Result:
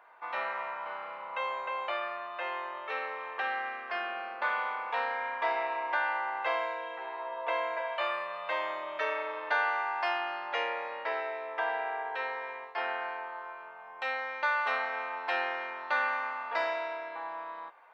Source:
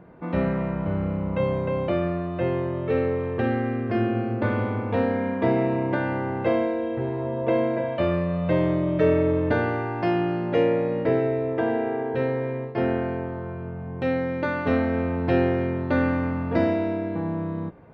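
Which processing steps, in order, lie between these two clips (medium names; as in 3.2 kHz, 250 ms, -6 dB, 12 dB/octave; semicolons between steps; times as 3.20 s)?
Chebyshev high-pass 900 Hz, order 3; trim +2.5 dB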